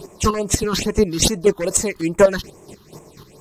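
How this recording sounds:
phaser sweep stages 6, 2.4 Hz, lowest notch 590–4,300 Hz
a quantiser's noise floor 12 bits, dither none
chopped level 4.1 Hz, depth 60%, duty 25%
MP3

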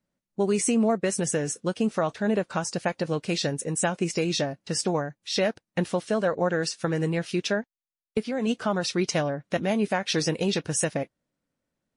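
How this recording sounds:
background noise floor −89 dBFS
spectral slope −4.5 dB per octave

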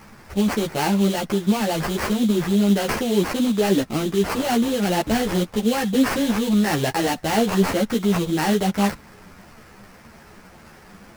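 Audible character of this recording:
aliases and images of a low sample rate 3,600 Hz, jitter 20%
a shimmering, thickened sound

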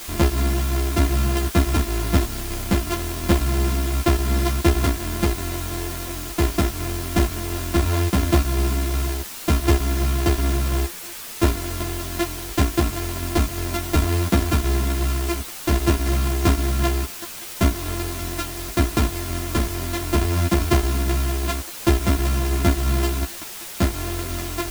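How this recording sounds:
a buzz of ramps at a fixed pitch in blocks of 128 samples
tremolo saw down 2.8 Hz, depth 30%
a quantiser's noise floor 6 bits, dither triangular
a shimmering, thickened sound

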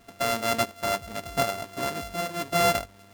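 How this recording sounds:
a buzz of ramps at a fixed pitch in blocks of 64 samples
tremolo saw up 1.4 Hz, depth 55%
a quantiser's noise floor 10 bits, dither none

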